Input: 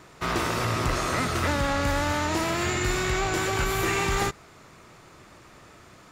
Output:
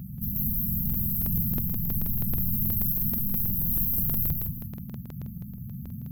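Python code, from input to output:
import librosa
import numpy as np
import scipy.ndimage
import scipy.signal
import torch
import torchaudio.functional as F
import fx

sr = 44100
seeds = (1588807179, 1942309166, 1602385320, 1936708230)

p1 = fx.octave_divider(x, sr, octaves=1, level_db=-4.0)
p2 = fx.highpass(p1, sr, hz=170.0, slope=6)
p3 = fx.rider(p2, sr, range_db=10, speed_s=0.5)
p4 = p2 + (p3 * 10.0 ** (2.0 / 20.0))
p5 = 10.0 ** (-11.0 / 20.0) * np.tanh(p4 / 10.0 ** (-11.0 / 20.0))
p6 = fx.mod_noise(p5, sr, seeds[0], snr_db=28)
p7 = fx.fold_sine(p6, sr, drive_db=14, ceiling_db=-11.5)
p8 = fx.brickwall_bandstop(p7, sr, low_hz=240.0, high_hz=12000.0)
p9 = fx.echo_feedback(p8, sr, ms=182, feedback_pct=32, wet_db=-4.0)
p10 = fx.buffer_crackle(p9, sr, first_s=0.69, period_s=0.16, block=2048, kind='repeat')
y = p10 * 10.0 ** (-3.5 / 20.0)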